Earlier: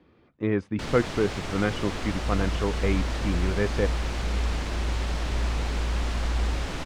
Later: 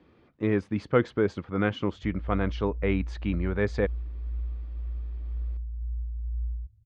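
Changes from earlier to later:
first sound: muted
second sound: add high-pass filter 68 Hz

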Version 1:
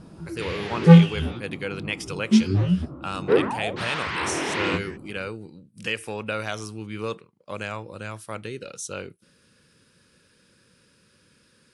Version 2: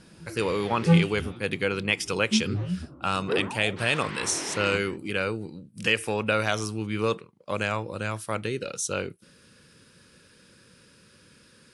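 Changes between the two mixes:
speech +4.5 dB
background −8.5 dB

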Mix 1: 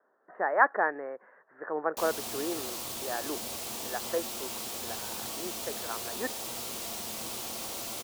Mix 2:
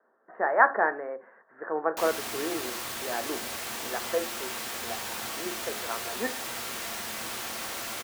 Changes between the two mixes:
speech: send on
background: add parametric band 1,700 Hz +13 dB 1.1 octaves

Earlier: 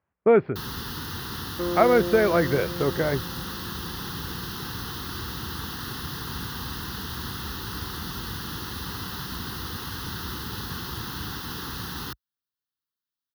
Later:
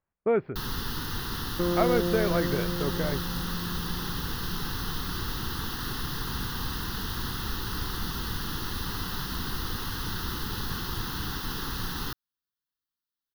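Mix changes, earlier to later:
speech −7.0 dB
second sound: remove high-pass filter 210 Hz 24 dB per octave
master: remove high-pass filter 55 Hz 24 dB per octave

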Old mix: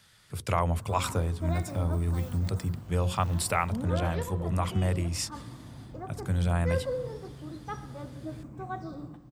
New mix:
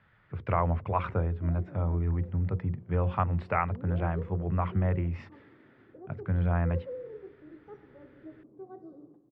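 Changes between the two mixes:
speech: add low-pass filter 2,100 Hz 24 dB per octave
background: add resonant band-pass 400 Hz, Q 4.1

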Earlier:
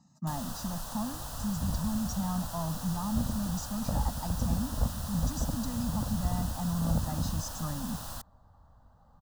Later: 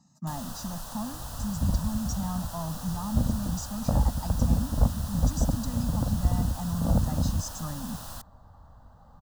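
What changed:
speech: add high-shelf EQ 6,300 Hz +7 dB
second sound +7.0 dB

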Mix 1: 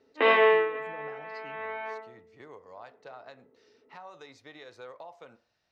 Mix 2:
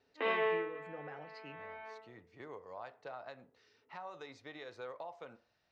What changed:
speech: add high-shelf EQ 7,300 Hz −11 dB
background −12.0 dB

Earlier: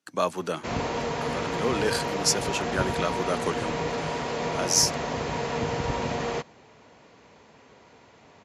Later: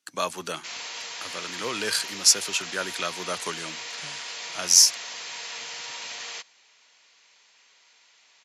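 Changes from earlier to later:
background: add resonant band-pass 5,300 Hz, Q 0.55
master: add tilt shelving filter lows −7 dB, about 1,400 Hz

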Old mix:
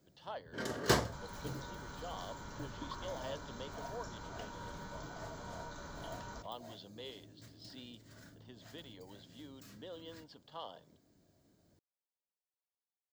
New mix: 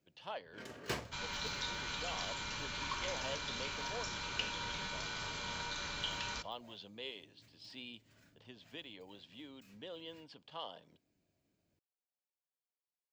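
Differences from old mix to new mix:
first sound −11.0 dB
second sound: add parametric band 3,700 Hz +14.5 dB 2.2 octaves
master: add parametric band 2,500 Hz +13 dB 0.45 octaves

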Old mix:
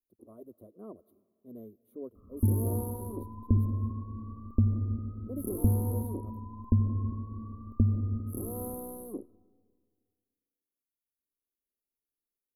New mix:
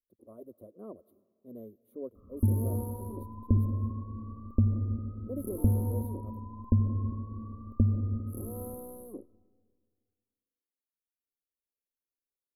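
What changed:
first sound −5.0 dB
master: add parametric band 540 Hz +6.5 dB 0.27 octaves

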